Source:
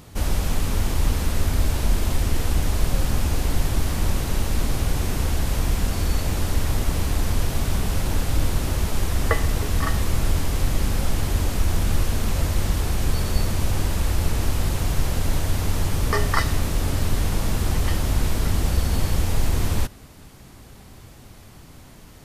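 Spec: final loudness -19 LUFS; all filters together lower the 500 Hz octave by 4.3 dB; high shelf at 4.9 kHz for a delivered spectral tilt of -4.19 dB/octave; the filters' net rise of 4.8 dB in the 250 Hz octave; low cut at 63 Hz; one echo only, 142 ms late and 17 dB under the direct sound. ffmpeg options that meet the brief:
-af "highpass=63,equalizer=f=250:t=o:g=8.5,equalizer=f=500:t=o:g=-9,highshelf=f=4900:g=4.5,aecho=1:1:142:0.141,volume=1.88"

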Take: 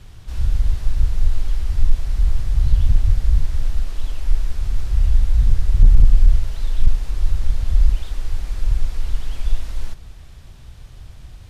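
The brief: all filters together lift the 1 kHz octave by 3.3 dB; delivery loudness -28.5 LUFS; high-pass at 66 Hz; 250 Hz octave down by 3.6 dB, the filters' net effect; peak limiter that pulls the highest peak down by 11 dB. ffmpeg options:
-af "highpass=66,equalizer=f=250:t=o:g=-6,equalizer=f=1000:t=o:g=4.5,volume=1.68,alimiter=limit=0.158:level=0:latency=1"

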